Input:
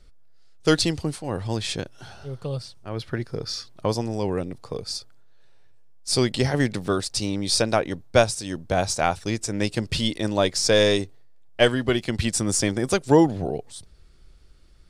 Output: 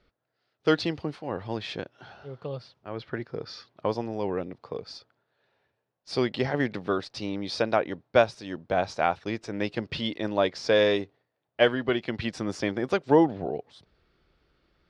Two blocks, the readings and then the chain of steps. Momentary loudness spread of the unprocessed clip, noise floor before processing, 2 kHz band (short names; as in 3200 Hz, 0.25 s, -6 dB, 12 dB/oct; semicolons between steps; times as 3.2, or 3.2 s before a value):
15 LU, -49 dBFS, -2.5 dB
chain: HPF 340 Hz 6 dB/oct; air absorption 280 m